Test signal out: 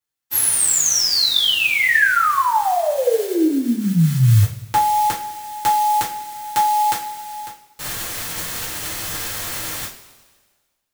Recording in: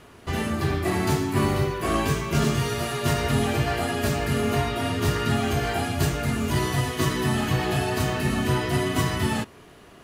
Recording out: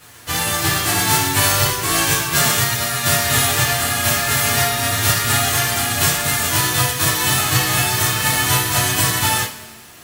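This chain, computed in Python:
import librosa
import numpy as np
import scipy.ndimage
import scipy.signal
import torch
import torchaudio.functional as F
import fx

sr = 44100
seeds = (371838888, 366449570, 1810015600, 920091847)

y = fx.envelope_flatten(x, sr, power=0.3)
y = fx.rev_double_slope(y, sr, seeds[0], early_s=0.32, late_s=1.5, knee_db=-17, drr_db=-8.0)
y = y * 10.0 ** (-2.5 / 20.0)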